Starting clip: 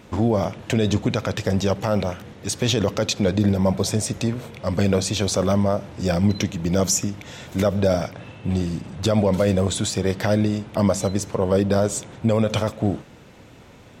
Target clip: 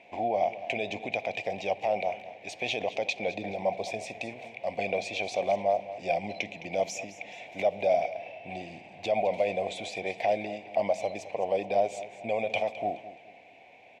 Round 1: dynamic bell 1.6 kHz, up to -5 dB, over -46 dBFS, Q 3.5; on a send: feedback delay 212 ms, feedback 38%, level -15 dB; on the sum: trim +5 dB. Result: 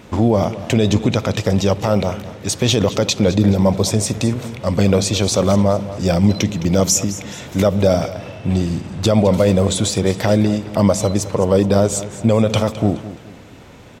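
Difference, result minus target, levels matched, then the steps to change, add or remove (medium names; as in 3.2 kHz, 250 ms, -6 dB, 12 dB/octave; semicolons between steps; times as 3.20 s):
1 kHz band -9.0 dB
add after dynamic bell: two resonant band-passes 1.3 kHz, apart 1.7 oct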